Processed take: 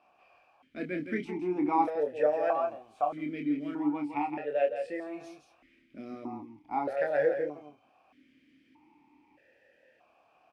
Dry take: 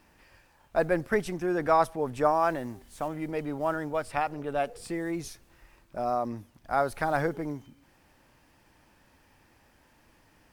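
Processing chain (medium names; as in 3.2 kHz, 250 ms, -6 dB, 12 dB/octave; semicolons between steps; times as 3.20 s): doubling 27 ms -5 dB; delay 166 ms -8 dB; stepped vowel filter 1.6 Hz; trim +8 dB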